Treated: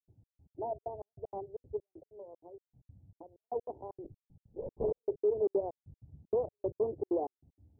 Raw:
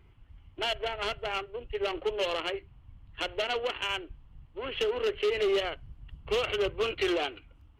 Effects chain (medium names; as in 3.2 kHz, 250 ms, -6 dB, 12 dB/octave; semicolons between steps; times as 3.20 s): local Wiener filter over 41 samples; high-pass 81 Hz 24 dB/octave; 1.93–3.44 s: compression 16:1, threshold -44 dBFS, peak gain reduction 18.5 dB; steep low-pass 930 Hz 72 dB/octave; 4.04–5.00 s: LPC vocoder at 8 kHz whisper; trance gate ".xx..x.xxx" 192 bpm -60 dB